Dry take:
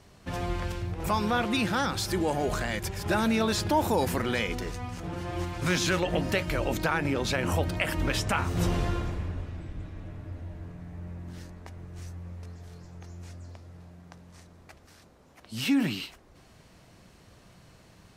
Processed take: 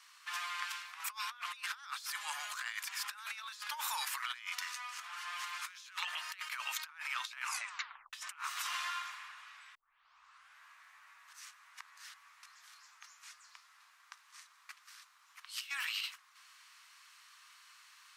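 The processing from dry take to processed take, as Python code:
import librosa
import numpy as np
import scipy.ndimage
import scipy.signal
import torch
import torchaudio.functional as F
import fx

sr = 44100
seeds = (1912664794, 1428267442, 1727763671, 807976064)

y = fx.edit(x, sr, fx.tape_stop(start_s=7.42, length_s=0.71),
    fx.tape_start(start_s=9.75, length_s=0.87),
    fx.reverse_span(start_s=11.33, length_s=0.81), tone=tone)
y = scipy.signal.sosfilt(scipy.signal.ellip(4, 1.0, 60, 1100.0, 'highpass', fs=sr, output='sos'), y)
y = fx.over_compress(y, sr, threshold_db=-39.0, ratio=-0.5)
y = y * 10.0 ** (-1.5 / 20.0)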